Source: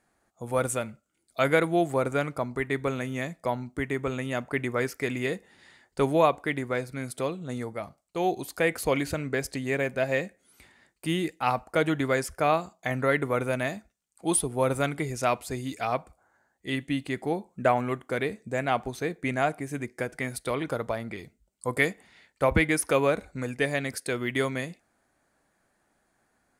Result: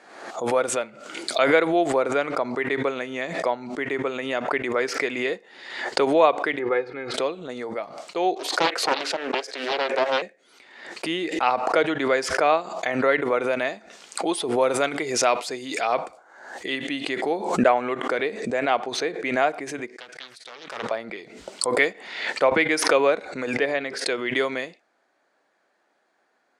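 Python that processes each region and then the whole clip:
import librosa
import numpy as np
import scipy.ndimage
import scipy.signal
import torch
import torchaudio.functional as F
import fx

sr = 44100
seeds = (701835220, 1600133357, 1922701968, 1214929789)

y = fx.chain(x, sr, fx.lowpass(hz=2200.0, slope=12),
    fx.comb(ms=2.4, depth=0.73), at=(6.59, 7.14))
y = fx.chain(y, sr, fx.highpass(hz=350.0, slope=24),
    fx.doppler_dist(depth_ms=0.81), at=(8.35, 10.22))
y = fx.chain(y, sr, fx.high_shelf(hz=6300.0, db=7.0),
    fx.sustainer(db_per_s=130.0), at=(14.61, 17.69))
y = fx.chain(y, sr, fx.tone_stack(knobs='5-5-5'),
    fx.doppler_dist(depth_ms=0.87), at=(19.96, 20.91))
y = fx.chain(y, sr, fx.lowpass(hz=2800.0, slope=6),
    fx.hum_notches(base_hz=50, count=8), at=(23.57, 23.99))
y = scipy.signal.sosfilt(scipy.signal.cheby1(2, 1.0, [410.0, 4500.0], 'bandpass', fs=sr, output='sos'), y)
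y = fx.pre_swell(y, sr, db_per_s=63.0)
y = y * librosa.db_to_amplitude(4.5)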